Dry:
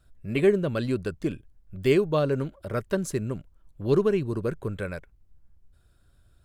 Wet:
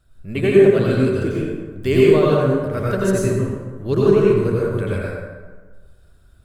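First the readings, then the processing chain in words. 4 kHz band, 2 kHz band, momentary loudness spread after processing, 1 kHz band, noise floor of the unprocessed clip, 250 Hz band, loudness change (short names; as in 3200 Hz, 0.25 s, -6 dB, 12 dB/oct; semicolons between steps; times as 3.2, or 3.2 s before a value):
+7.0 dB, +8.0 dB, 14 LU, +9.0 dB, -62 dBFS, +9.0 dB, +9.5 dB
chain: plate-style reverb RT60 1.4 s, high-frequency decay 0.55×, pre-delay 75 ms, DRR -6.5 dB; gain +1 dB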